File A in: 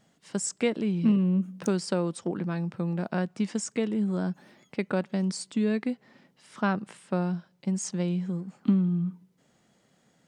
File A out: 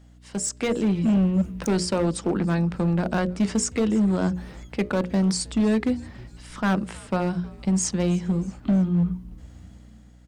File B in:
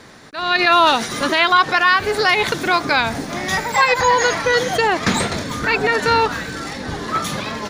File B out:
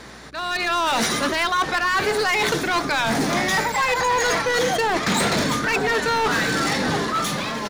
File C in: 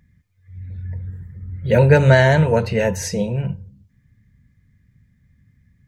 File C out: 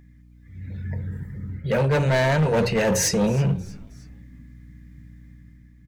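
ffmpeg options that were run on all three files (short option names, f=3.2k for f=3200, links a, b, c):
-filter_complex "[0:a]highpass=f=120:w=0.5412,highpass=f=120:w=1.3066,bandreject=f=60:t=h:w=6,bandreject=f=120:t=h:w=6,bandreject=f=180:t=h:w=6,bandreject=f=240:t=h:w=6,bandreject=f=300:t=h:w=6,bandreject=f=360:t=h:w=6,bandreject=f=420:t=h:w=6,bandreject=f=480:t=h:w=6,bandreject=f=540:t=h:w=6,bandreject=f=600:t=h:w=6,areverse,acompressor=threshold=-24dB:ratio=6,areverse,aeval=exprs='val(0)+0.00251*(sin(2*PI*60*n/s)+sin(2*PI*2*60*n/s)/2+sin(2*PI*3*60*n/s)/3+sin(2*PI*4*60*n/s)/4+sin(2*PI*5*60*n/s)/5)':c=same,asoftclip=type=hard:threshold=-25dB,dynaudnorm=f=110:g=11:m=6dB,asplit=2[a][b];[b]asplit=3[c][d][e];[c]adelay=316,afreqshift=-130,volume=-22dB[f];[d]adelay=632,afreqshift=-260,volume=-28.4dB[g];[e]adelay=948,afreqshift=-390,volume=-34.8dB[h];[f][g][h]amix=inputs=3:normalize=0[i];[a][i]amix=inputs=2:normalize=0,volume=2.5dB"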